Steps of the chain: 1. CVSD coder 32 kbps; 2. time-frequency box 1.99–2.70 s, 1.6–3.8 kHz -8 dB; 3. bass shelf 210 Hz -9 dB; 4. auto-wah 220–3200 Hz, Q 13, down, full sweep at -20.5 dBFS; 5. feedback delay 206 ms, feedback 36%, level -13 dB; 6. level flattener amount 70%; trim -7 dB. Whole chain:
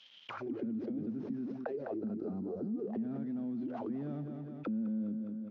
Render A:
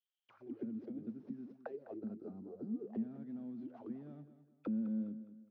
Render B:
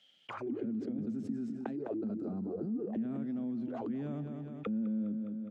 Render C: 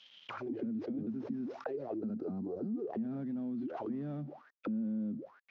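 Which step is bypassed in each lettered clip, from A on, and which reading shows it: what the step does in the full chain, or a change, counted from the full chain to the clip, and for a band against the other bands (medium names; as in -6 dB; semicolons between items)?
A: 6, crest factor change +2.5 dB; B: 1, loudness change +1.0 LU; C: 5, momentary loudness spread change +2 LU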